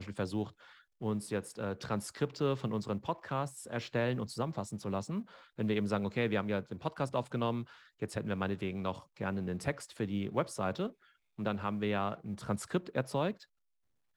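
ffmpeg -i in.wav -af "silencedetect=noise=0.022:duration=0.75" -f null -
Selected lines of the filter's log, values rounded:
silence_start: 13.31
silence_end: 14.17 | silence_duration: 0.86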